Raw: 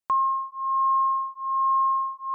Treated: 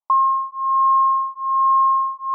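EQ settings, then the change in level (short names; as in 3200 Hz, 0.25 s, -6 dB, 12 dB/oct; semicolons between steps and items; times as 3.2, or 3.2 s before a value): elliptic band-pass 570–1200 Hz; bell 910 Hz +14.5 dB; -3.0 dB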